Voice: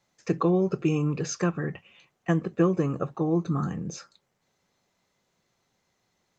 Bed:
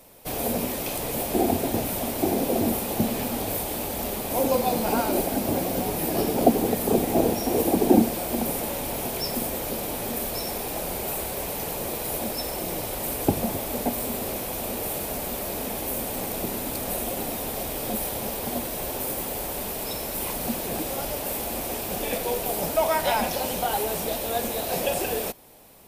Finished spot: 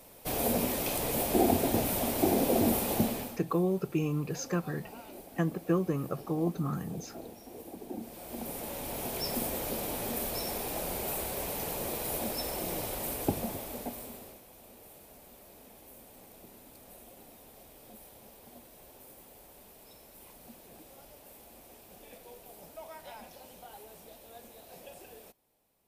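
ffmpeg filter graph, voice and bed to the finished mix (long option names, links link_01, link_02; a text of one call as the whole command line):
ffmpeg -i stem1.wav -i stem2.wav -filter_complex "[0:a]adelay=3100,volume=-5.5dB[link_01];[1:a]volume=16dB,afade=type=out:start_time=2.94:duration=0.46:silence=0.0891251,afade=type=in:start_time=7.98:duration=1.36:silence=0.11885,afade=type=out:start_time=12.84:duration=1.57:silence=0.11885[link_02];[link_01][link_02]amix=inputs=2:normalize=0" out.wav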